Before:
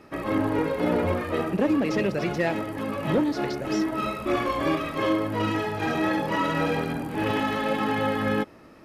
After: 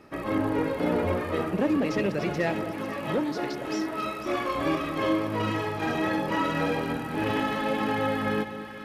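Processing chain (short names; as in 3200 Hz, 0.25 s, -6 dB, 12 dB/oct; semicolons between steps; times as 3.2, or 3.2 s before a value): 2.71–4.55 low shelf 230 Hz -8 dB; split-band echo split 1100 Hz, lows 0.215 s, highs 0.496 s, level -11 dB; gain -2 dB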